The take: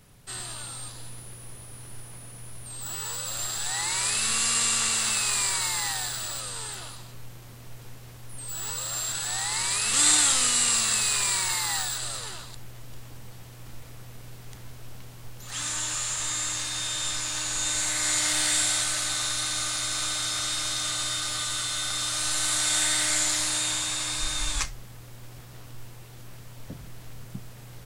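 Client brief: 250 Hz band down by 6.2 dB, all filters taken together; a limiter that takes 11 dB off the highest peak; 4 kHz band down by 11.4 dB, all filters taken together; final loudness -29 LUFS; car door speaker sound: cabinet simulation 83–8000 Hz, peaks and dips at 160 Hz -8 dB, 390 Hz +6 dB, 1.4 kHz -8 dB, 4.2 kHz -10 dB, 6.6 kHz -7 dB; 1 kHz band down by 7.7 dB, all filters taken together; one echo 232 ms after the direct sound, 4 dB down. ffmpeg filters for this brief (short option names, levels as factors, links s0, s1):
-af "equalizer=f=250:t=o:g=-8.5,equalizer=f=1000:t=o:g=-6,equalizer=f=4000:t=o:g=-8,alimiter=limit=0.1:level=0:latency=1,highpass=83,equalizer=f=160:t=q:w=4:g=-8,equalizer=f=390:t=q:w=4:g=6,equalizer=f=1400:t=q:w=4:g=-8,equalizer=f=4200:t=q:w=4:g=-10,equalizer=f=6600:t=q:w=4:g=-7,lowpass=f=8000:w=0.5412,lowpass=f=8000:w=1.3066,aecho=1:1:232:0.631,volume=1.68"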